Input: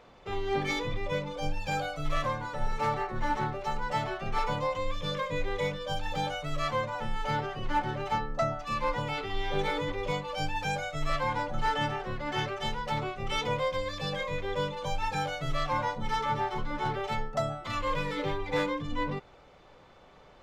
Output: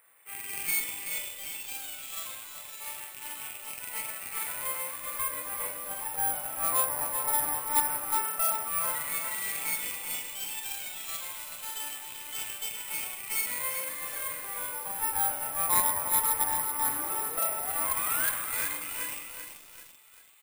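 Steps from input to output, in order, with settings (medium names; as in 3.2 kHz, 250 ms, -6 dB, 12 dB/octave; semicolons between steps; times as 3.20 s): rattle on loud lows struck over -37 dBFS, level -29 dBFS; doubling 44 ms -4 dB; painted sound rise, 16.87–18.30 s, 260–1700 Hz -30 dBFS; LFO band-pass sine 0.11 Hz 930–3800 Hz; feedback echo behind a high-pass 387 ms, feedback 81%, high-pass 2.6 kHz, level -18 dB; on a send at -3.5 dB: reverberation RT60 2.0 s, pre-delay 3 ms; on the sum: Chebyshev shaper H 6 -7 dB, 8 -8 dB, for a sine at -15 dBFS; careless resampling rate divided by 4×, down none, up zero stuff; bit-crushed delay 385 ms, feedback 55%, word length 6-bit, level -7 dB; trim -3 dB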